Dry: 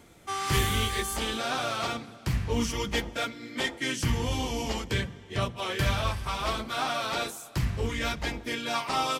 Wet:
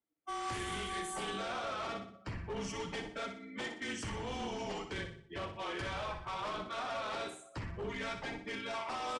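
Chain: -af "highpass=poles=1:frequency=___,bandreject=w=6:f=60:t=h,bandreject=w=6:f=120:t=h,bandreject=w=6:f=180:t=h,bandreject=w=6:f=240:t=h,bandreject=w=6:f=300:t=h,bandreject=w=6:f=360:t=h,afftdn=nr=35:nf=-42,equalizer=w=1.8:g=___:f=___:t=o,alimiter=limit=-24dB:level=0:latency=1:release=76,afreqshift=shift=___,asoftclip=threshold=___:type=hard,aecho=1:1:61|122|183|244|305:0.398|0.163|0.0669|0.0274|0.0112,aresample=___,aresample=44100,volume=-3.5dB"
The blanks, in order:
270, -7, 4.6k, -29, -32.5dB, 22050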